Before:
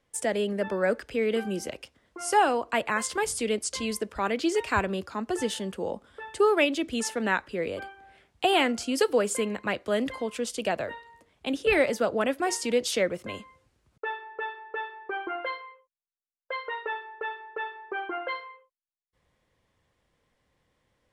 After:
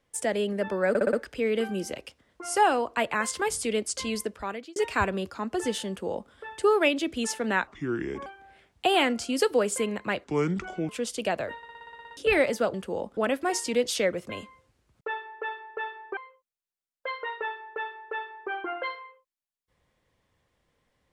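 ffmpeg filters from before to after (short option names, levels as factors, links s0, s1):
-filter_complex "[0:a]asplit=23[s0][s1][s2][s3][s4][s5][s6][s7][s8][s9][s10][s11][s12][s13][s14][s15][s16][s17][s18][s19][s20][s21][s22];[s0]atrim=end=0.952[s23];[s1]atrim=start=0.888:end=0.952[s24];[s2]atrim=start=0.888:end=0.952[s25];[s3]atrim=start=0.888:end=0.952[s26];[s4]atrim=start=0.888:end=4.52,asetpts=PTS-STARTPTS,afade=t=out:st=3.102:d=0.53[s27];[s5]atrim=start=4.52:end=7.434,asetpts=PTS-STARTPTS,afade=t=in:d=0.004:c=hsin[s28];[s6]atrim=start=7.43:end=7.85,asetpts=PTS-STARTPTS,asetrate=31311,aresample=44100,atrim=end_sample=26087,asetpts=PTS-STARTPTS[s29];[s7]atrim=start=7.846:end=9.834[s30];[s8]atrim=start=9.83:end=10.29,asetpts=PTS-STARTPTS,asetrate=31311,aresample=44100[s31];[s9]atrim=start=10.286:end=11.032[s32];[s10]atrim=start=10.968:end=11.032[s33];[s11]atrim=start=10.968:end=11.032[s34];[s12]atrim=start=10.968:end=11.032[s35];[s13]atrim=start=10.968:end=11.032[s36];[s14]atrim=start=10.968:end=11.032[s37];[s15]atrim=start=10.968:end=11.032[s38];[s16]atrim=start=10.968:end=11.032[s39];[s17]atrim=start=10.968:end=11.032[s40];[s18]atrim=start=10.968:end=11.032[s41];[s19]atrim=start=11.568:end=12.142[s42];[s20]atrim=start=5.638:end=6.072[s43];[s21]atrim=start=12.138:end=15.142[s44];[s22]atrim=start=15.618[s45];[s23][s24]acrossfade=d=0.004:c1=hsin:c2=hsin[s46];[s46][s25]acrossfade=d=0.004:c1=hsin:c2=hsin[s47];[s47][s26]acrossfade=d=0.004:c1=hsin:c2=hsin[s48];[s27][s28]concat=n=2:v=0:a=1[s49];[s48][s49]acrossfade=d=0.004:c1=hsin:c2=hsin[s50];[s50][s29]acrossfade=d=0.004:c1=hsin:c2=hsin[s51];[s51][s30]acrossfade=d=0.004:c1=hsin:c2=hsin[s52];[s52][s31]acrossfade=d=0.004:c1=hsin:c2=hsin[s53];[s53][s32]acrossfade=d=0.004:c1=hsin:c2=hsin[s54];[s54][s33]acrossfade=d=0.004:c1=hsin:c2=hsin[s55];[s55][s34]acrossfade=d=0.004:c1=hsin:c2=hsin[s56];[s56][s35]acrossfade=d=0.004:c1=hsin:c2=hsin[s57];[s57][s36]acrossfade=d=0.004:c1=hsin:c2=hsin[s58];[s58][s37]acrossfade=d=0.004:c1=hsin:c2=hsin[s59];[s59][s38]acrossfade=d=0.004:c1=hsin:c2=hsin[s60];[s60][s39]acrossfade=d=0.004:c1=hsin:c2=hsin[s61];[s61][s40]acrossfade=d=0.004:c1=hsin:c2=hsin[s62];[s62][s41]acrossfade=d=0.004:c1=hsin:c2=hsin[s63];[s63][s42]acrossfade=d=0.004:c1=hsin:c2=hsin[s64];[s64][s43]acrossfade=d=0.004:c1=hsin:c2=hsin[s65];[s65][s44]acrossfade=d=0.004:c1=hsin:c2=hsin[s66];[s66][s45]acrossfade=d=0.004:c1=hsin:c2=hsin"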